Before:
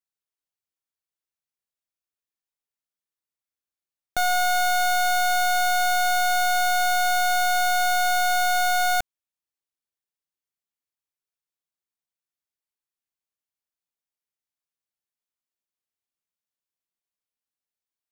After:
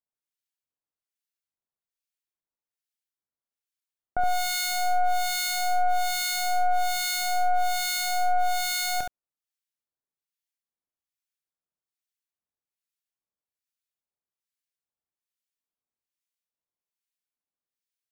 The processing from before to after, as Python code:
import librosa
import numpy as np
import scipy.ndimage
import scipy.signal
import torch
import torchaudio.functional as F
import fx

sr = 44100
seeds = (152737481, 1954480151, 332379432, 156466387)

p1 = fx.harmonic_tremolo(x, sr, hz=1.2, depth_pct=100, crossover_hz=1400.0)
y = p1 + fx.room_early_taps(p1, sr, ms=(26, 70), db=(-12.0, -5.5), dry=0)